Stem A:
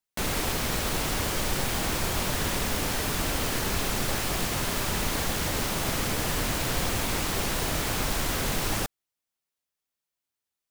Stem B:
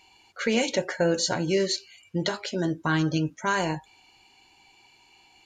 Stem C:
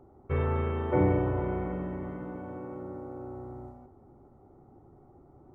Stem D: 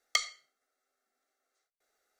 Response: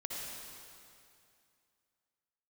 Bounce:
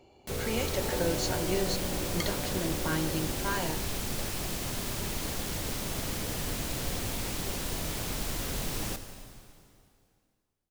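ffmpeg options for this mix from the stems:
-filter_complex "[0:a]equalizer=frequency=1300:width_type=o:width=2.1:gain=-5.5,adelay=100,volume=-10.5dB,asplit=2[link_01][link_02];[link_02]volume=-6.5dB[link_03];[1:a]volume=-11dB[link_04];[2:a]equalizer=frequency=580:width=1.5:gain=8,acompressor=threshold=-29dB:ratio=6,volume=-6dB[link_05];[3:a]adelay=2050,volume=-12dB[link_06];[4:a]atrim=start_sample=2205[link_07];[link_03][link_07]afir=irnorm=-1:irlink=0[link_08];[link_01][link_04][link_05][link_06][link_08]amix=inputs=5:normalize=0,dynaudnorm=framelen=100:gausssize=11:maxgain=3dB"

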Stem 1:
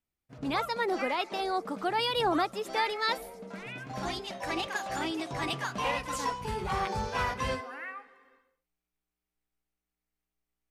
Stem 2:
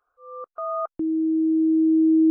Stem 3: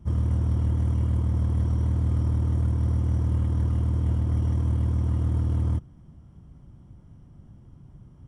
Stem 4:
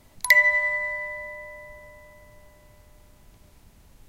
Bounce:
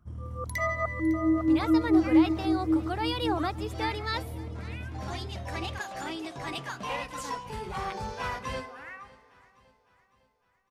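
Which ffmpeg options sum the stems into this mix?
ffmpeg -i stem1.wav -i stem2.wav -i stem3.wav -i stem4.wav -filter_complex "[0:a]adelay=1050,volume=-3dB,asplit=2[link_01][link_02];[link_02]volume=-21.5dB[link_03];[1:a]tremolo=f=4.6:d=0.85,volume=0dB,asplit=2[link_04][link_05];[link_05]volume=-5.5dB[link_06];[2:a]volume=-15dB[link_07];[3:a]dynaudnorm=framelen=160:gausssize=11:maxgain=7dB,asoftclip=type=tanh:threshold=-13dB,adelay=250,volume=-14dB,asplit=2[link_08][link_09];[link_09]volume=-16.5dB[link_10];[link_03][link_06][link_10]amix=inputs=3:normalize=0,aecho=0:1:556|1112|1668|2224|2780|3336|3892:1|0.48|0.23|0.111|0.0531|0.0255|0.0122[link_11];[link_01][link_04][link_07][link_08][link_11]amix=inputs=5:normalize=0" out.wav

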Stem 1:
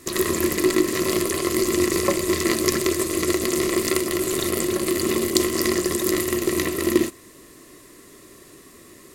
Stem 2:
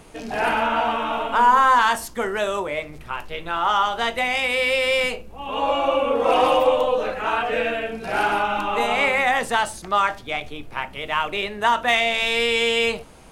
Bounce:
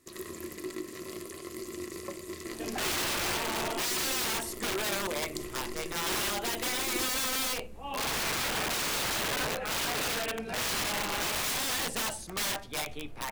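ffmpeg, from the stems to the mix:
ffmpeg -i stem1.wav -i stem2.wav -filter_complex "[0:a]volume=-19dB[link_01];[1:a]adynamicequalizer=threshold=0.0282:dfrequency=1300:dqfactor=1.2:tfrequency=1300:tqfactor=1.2:attack=5:release=100:ratio=0.375:range=3:mode=cutabove:tftype=bell,aeval=exprs='(mod(11.2*val(0)+1,2)-1)/11.2':channel_layout=same,adelay=2450,volume=-5.5dB[link_02];[link_01][link_02]amix=inputs=2:normalize=0" out.wav

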